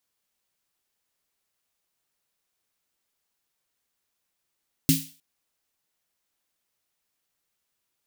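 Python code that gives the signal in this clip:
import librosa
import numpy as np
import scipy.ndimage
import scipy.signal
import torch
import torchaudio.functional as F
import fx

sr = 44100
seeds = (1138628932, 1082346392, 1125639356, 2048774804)

y = fx.drum_snare(sr, seeds[0], length_s=0.31, hz=160.0, second_hz=270.0, noise_db=-4, noise_from_hz=2500.0, decay_s=0.28, noise_decay_s=0.4)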